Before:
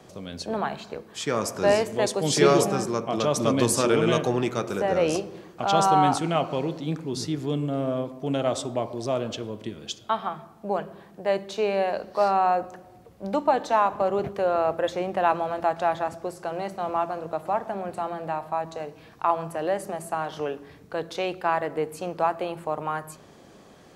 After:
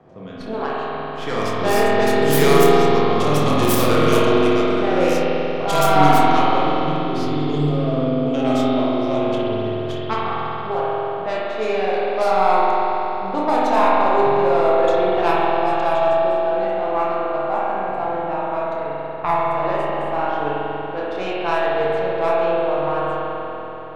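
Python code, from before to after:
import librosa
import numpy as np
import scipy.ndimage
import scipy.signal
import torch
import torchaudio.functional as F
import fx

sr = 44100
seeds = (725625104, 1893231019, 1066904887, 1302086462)

p1 = fx.tracing_dist(x, sr, depth_ms=0.32)
p2 = fx.high_shelf(p1, sr, hz=7200.0, db=9.0)
p3 = fx.notch(p2, sr, hz=580.0, q=14.0)
p4 = p3 + fx.room_flutter(p3, sr, wall_m=4.7, rt60_s=0.27, dry=0)
p5 = fx.env_lowpass(p4, sr, base_hz=1400.0, full_db=-16.0)
p6 = fx.rev_spring(p5, sr, rt60_s=3.9, pass_ms=(47,), chirp_ms=20, drr_db=-6.0)
y = F.gain(torch.from_numpy(p6), -1.0).numpy()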